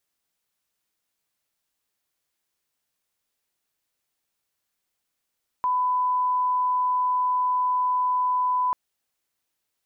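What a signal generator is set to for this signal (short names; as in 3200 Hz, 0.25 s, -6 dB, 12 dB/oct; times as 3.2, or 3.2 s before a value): line-up tone -20 dBFS 3.09 s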